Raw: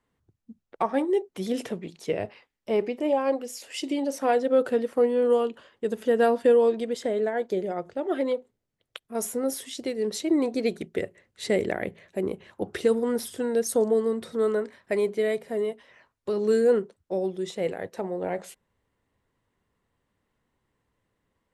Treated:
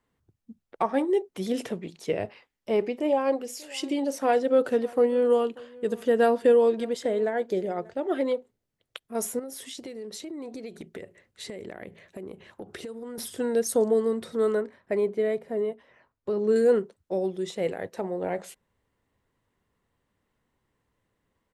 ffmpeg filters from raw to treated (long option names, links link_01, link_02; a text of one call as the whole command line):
ffmpeg -i in.wav -filter_complex "[0:a]asplit=3[link_01][link_02][link_03];[link_01]afade=type=out:start_time=3.38:duration=0.02[link_04];[link_02]aecho=1:1:587:0.0708,afade=type=in:start_time=3.38:duration=0.02,afade=type=out:start_time=7.92:duration=0.02[link_05];[link_03]afade=type=in:start_time=7.92:duration=0.02[link_06];[link_04][link_05][link_06]amix=inputs=3:normalize=0,asettb=1/sr,asplit=3[link_07][link_08][link_09];[link_07]atrim=end=9.394[link_10];[link_08]atrim=start=9.39:end=13.18,asetpts=PTS-STARTPTS,afade=type=in:duration=0.004:curve=qsin,afade=type=out:start_time=3.786:duration=0.004:curve=qsin,acompressor=threshold=-35dB:ratio=8:attack=3.2:release=140:knee=1:detection=peak[link_11];[link_09]atrim=start=13.176[link_12];[link_10][link_11]acrossfade=duration=0.004:curve1=hsin:curve2=qsin[link_13];[link_13][link_12]acrossfade=duration=0.004:curve1=qsin:curve2=hsin,asettb=1/sr,asplit=3[link_14][link_15][link_16];[link_14]atrim=end=14.614[link_17];[link_15]atrim=start=14.61:end=16.56,asetpts=PTS-STARTPTS,afade=type=in:duration=0.004:curve=qsin,afade=type=out:start_time=1.946:duration=0.004:curve=qsin,highshelf=frequency=2200:gain=-11.5[link_18];[link_16]atrim=start=16.556[link_19];[link_17][link_18]acrossfade=duration=0.004:curve1=hsin:curve2=qsin[link_20];[link_20][link_19]acrossfade=duration=0.004:curve1=qsin:curve2=hsin" out.wav